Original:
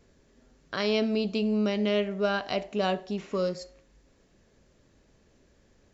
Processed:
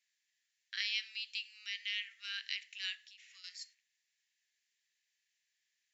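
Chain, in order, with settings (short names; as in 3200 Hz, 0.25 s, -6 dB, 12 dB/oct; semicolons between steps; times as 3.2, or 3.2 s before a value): gate -50 dBFS, range -8 dB; Chebyshev high-pass 1800 Hz, order 5; 2.95–3.44 compressor 6:1, threshold -54 dBFS, peak gain reduction 10.5 dB; gain -1.5 dB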